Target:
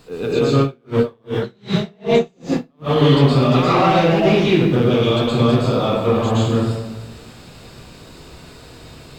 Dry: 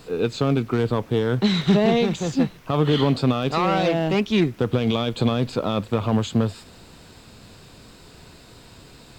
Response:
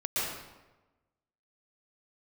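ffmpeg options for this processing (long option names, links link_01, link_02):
-filter_complex "[1:a]atrim=start_sample=2205[link_01];[0:a][link_01]afir=irnorm=-1:irlink=0,asettb=1/sr,asplit=3[link_02][link_03][link_04];[link_02]atrim=end=0.614[link_05];[link_03]atrim=start=0.61:end=2.96,asetpts=PTS-STARTPTS,afade=type=in:duration=0.004:curve=qsin,afade=type=out:start_time=2.346:duration=0.004:curve=qsin,aeval=exprs='val(0)*pow(10,-40*(0.5-0.5*cos(2*PI*2.6*n/s))/20)':channel_layout=same[link_06];[link_04]atrim=start=2.956[link_07];[link_05][link_06]acrossfade=duration=0.004:curve1=hsin:curve2=qsin[link_08];[link_08][link_07]acrossfade=duration=0.004:curve1=qsin:curve2=hsin,volume=-1.5dB"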